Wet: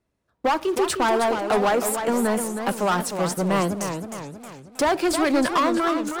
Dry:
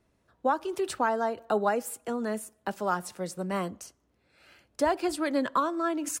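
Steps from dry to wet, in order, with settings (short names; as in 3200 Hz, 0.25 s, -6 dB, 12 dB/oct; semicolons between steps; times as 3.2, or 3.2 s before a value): ending faded out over 0.53 s; sample leveller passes 3; warbling echo 0.312 s, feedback 49%, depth 181 cents, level -7.5 dB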